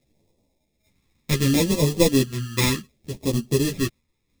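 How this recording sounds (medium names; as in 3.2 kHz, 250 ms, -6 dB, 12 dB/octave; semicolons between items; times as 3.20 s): aliases and images of a low sample rate 1.5 kHz, jitter 0%; phasing stages 2, 0.67 Hz, lowest notch 650–1400 Hz; random-step tremolo; a shimmering, thickened sound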